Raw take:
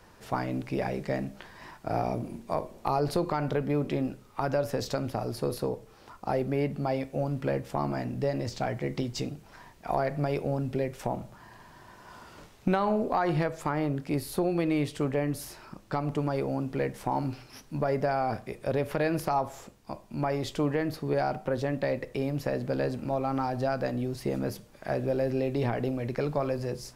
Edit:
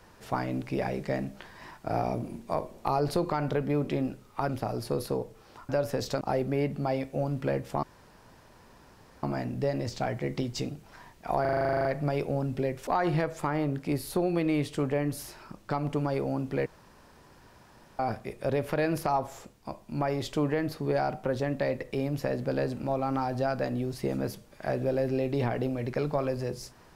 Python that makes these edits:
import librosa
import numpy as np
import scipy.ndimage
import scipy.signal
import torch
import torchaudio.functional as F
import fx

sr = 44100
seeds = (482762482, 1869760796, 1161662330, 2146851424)

y = fx.edit(x, sr, fx.move(start_s=4.49, length_s=0.52, to_s=6.21),
    fx.insert_room_tone(at_s=7.83, length_s=1.4),
    fx.stutter(start_s=10.01, slice_s=0.04, count=12),
    fx.cut(start_s=11.03, length_s=2.06),
    fx.room_tone_fill(start_s=16.88, length_s=1.33), tone=tone)